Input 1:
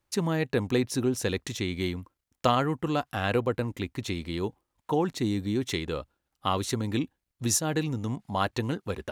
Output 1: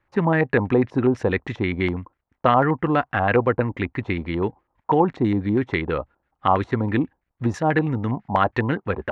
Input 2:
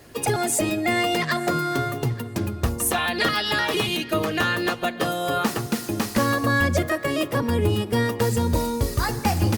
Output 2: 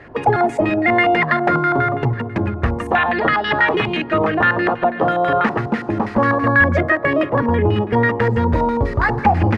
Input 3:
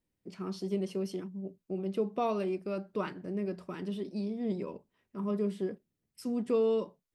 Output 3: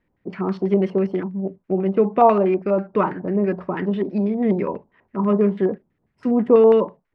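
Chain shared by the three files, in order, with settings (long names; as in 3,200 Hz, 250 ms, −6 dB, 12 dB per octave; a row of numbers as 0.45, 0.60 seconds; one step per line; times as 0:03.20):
in parallel at +1 dB: brickwall limiter −16.5 dBFS
on the sum: auto-filter low-pass square 6.1 Hz 890–1,900 Hz
normalise the peak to −3 dBFS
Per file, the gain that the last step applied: 0.0, −0.5, +7.0 decibels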